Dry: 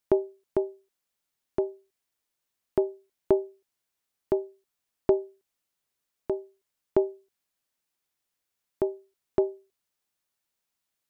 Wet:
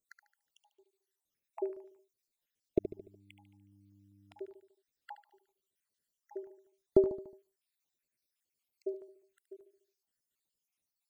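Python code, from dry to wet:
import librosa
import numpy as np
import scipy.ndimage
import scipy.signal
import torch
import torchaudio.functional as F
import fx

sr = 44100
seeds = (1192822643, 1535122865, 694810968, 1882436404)

p1 = fx.spec_dropout(x, sr, seeds[0], share_pct=68)
p2 = fx.dmg_buzz(p1, sr, base_hz=100.0, harmonics=3, level_db=-62.0, tilt_db=-4, odd_only=False, at=(2.79, 4.33), fade=0.02)
p3 = p2 + fx.echo_feedback(p2, sr, ms=73, feedback_pct=48, wet_db=-10, dry=0)
y = fx.filter_lfo_notch(p3, sr, shape='saw_down', hz=5.1, low_hz=700.0, high_hz=1600.0, q=0.89)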